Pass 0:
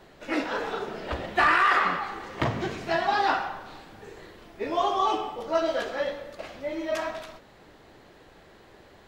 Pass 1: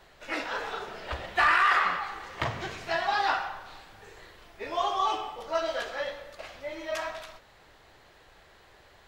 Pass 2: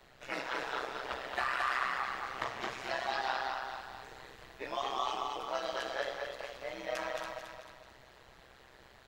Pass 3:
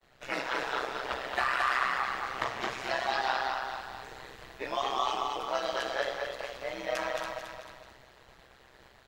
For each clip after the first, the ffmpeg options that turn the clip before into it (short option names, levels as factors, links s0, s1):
-af "equalizer=f=250:w=0.63:g=-12"
-filter_complex "[0:a]acrossover=split=300|1800|3800[s0][s1][s2][s3];[s0]acompressor=threshold=0.00178:ratio=4[s4];[s1]acompressor=threshold=0.0282:ratio=4[s5];[s2]acompressor=threshold=0.00794:ratio=4[s6];[s3]acompressor=threshold=0.00562:ratio=4[s7];[s4][s5][s6][s7]amix=inputs=4:normalize=0,aecho=1:1:221|442|663|884|1105|1326:0.631|0.278|0.122|0.0537|0.0236|0.0104,tremolo=f=130:d=0.824"
-af "agate=range=0.0224:threshold=0.00224:ratio=3:detection=peak,volume=1.68"